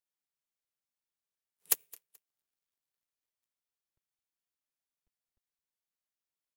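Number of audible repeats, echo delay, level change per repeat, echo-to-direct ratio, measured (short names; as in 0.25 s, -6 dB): 2, 0.215 s, -11.0 dB, -22.5 dB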